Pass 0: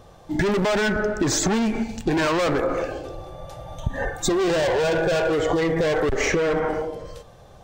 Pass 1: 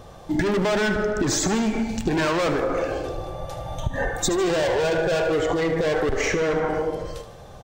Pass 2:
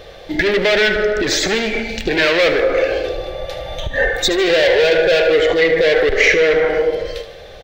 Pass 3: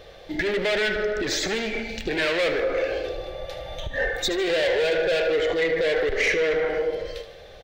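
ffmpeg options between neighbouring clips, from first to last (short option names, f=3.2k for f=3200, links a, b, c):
-filter_complex "[0:a]acompressor=threshold=-25dB:ratio=6,asplit=2[a][b];[b]aecho=0:1:76|152|228|304|380|456:0.251|0.138|0.076|0.0418|0.023|0.0126[c];[a][c]amix=inputs=2:normalize=0,volume=4.5dB"
-af "acontrast=66,equalizer=f=125:t=o:w=1:g=-9,equalizer=f=250:t=o:w=1:g=-7,equalizer=f=500:t=o:w=1:g=9,equalizer=f=1k:t=o:w=1:g=-11,equalizer=f=2k:t=o:w=1:g=11,equalizer=f=4k:t=o:w=1:g=9,equalizer=f=8k:t=o:w=1:g=-9,volume=-1.5dB"
-af "asoftclip=type=tanh:threshold=-6dB,volume=-8dB"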